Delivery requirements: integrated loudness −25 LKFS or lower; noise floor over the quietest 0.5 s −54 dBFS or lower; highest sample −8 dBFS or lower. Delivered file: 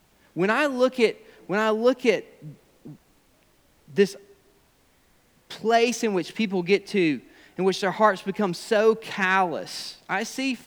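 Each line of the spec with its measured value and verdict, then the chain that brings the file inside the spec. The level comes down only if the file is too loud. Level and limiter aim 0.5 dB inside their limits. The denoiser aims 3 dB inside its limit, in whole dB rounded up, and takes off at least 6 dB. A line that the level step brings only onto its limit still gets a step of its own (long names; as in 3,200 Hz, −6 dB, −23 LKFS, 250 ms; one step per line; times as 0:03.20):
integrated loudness −24.0 LKFS: out of spec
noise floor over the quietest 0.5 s −62 dBFS: in spec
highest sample −5.5 dBFS: out of spec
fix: level −1.5 dB
brickwall limiter −8.5 dBFS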